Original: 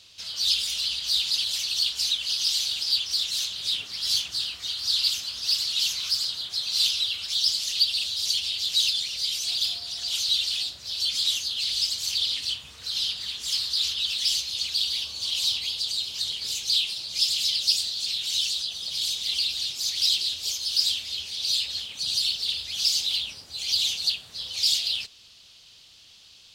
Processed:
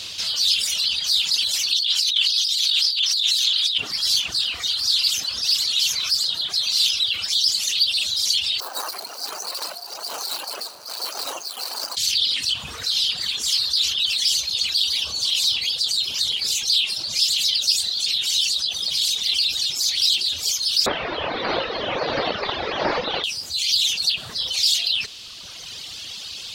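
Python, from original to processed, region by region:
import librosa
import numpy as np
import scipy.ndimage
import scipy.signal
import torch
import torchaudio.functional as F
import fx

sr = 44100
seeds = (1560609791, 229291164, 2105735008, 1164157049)

y = fx.chain(x, sr, fx.highpass(hz=1000.0, slope=12),
    fx.peak_eq(hz=3500.0, db=8.0, octaves=0.86),
    fx.over_compress(threshold_db=-25.0, ratio=-1.0), at=(1.72, 3.78))
y = fx.chain(y, sr, fx.median_filter(points=25),
    fx.highpass(hz=670.0, slope=12),
    fx.band_shelf(hz=2700.0, db=-9.0, octaves=1.2), at=(8.6, 11.97))
y = fx.chain(y, sr, fx.delta_mod(bps=32000, step_db=-23.5),
    fx.lowpass(hz=1800.0, slope=12),
    fx.peak_eq(hz=530.0, db=11.0, octaves=1.5), at=(20.86, 23.24))
y = fx.dereverb_blind(y, sr, rt60_s=1.5)
y = fx.low_shelf(y, sr, hz=75.0, db=-8.0)
y = fx.env_flatten(y, sr, amount_pct=50)
y = y * librosa.db_to_amplitude(2.0)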